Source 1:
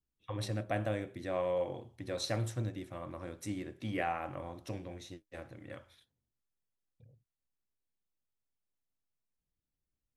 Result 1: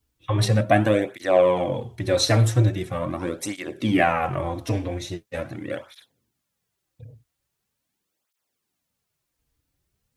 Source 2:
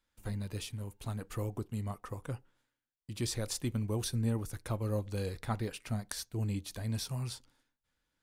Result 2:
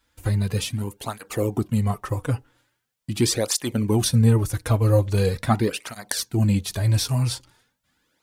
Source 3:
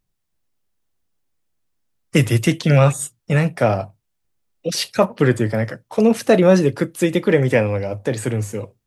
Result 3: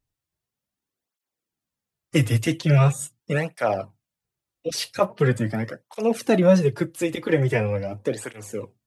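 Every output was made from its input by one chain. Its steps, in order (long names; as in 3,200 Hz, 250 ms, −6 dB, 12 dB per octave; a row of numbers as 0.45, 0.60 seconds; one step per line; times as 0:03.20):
through-zero flanger with one copy inverted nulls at 0.42 Hz, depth 5.7 ms
loudness normalisation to −23 LKFS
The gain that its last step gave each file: +18.5, +16.5, −2.5 decibels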